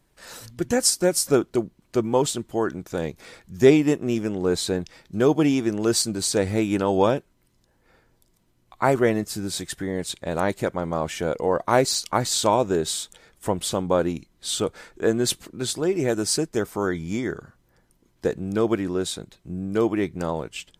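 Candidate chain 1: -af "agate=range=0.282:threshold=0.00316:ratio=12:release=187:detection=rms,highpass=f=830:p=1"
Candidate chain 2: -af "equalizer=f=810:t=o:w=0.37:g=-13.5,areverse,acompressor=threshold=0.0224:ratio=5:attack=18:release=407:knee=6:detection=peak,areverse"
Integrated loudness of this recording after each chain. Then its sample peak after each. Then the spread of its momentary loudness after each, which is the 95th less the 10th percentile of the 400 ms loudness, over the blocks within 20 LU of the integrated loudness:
-28.0 LUFS, -36.0 LUFS; -6.5 dBFS, -19.5 dBFS; 13 LU, 6 LU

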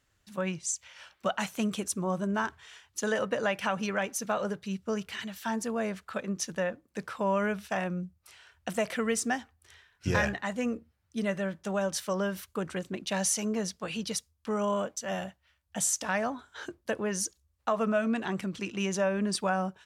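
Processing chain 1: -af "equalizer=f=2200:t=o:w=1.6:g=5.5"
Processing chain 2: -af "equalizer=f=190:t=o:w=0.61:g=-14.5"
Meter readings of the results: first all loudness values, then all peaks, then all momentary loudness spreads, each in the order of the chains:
-30.5 LUFS, -33.0 LUFS; -12.0 dBFS, -14.0 dBFS; 9 LU, 10 LU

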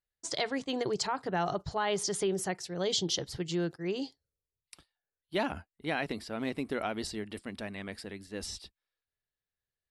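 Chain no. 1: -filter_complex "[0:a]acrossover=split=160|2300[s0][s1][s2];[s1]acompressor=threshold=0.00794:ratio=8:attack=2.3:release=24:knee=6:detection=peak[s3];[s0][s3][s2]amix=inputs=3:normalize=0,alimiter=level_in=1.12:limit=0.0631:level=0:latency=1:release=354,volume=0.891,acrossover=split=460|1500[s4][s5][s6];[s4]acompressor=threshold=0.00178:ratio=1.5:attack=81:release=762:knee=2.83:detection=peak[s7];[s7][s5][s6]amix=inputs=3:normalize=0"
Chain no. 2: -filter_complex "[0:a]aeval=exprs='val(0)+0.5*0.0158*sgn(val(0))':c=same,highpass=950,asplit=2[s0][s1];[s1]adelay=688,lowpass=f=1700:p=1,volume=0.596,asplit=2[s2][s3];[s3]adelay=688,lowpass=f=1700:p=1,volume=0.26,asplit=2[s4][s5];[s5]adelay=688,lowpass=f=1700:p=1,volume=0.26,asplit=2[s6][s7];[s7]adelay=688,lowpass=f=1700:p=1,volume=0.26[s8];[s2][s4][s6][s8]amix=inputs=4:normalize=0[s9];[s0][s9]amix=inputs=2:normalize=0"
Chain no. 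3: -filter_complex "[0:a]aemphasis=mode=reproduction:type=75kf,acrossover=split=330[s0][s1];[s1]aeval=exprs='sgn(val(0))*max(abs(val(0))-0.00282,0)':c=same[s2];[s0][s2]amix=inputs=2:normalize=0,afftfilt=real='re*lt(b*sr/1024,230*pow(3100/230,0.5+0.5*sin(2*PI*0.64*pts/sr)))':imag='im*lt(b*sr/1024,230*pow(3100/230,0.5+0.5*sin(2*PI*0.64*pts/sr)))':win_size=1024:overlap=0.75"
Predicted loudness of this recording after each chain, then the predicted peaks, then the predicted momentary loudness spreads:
-41.0 LUFS, -36.0 LUFS, -38.0 LUFS; -23.5 dBFS, -17.5 dBFS, -21.0 dBFS; 10 LU, 11 LU, 12 LU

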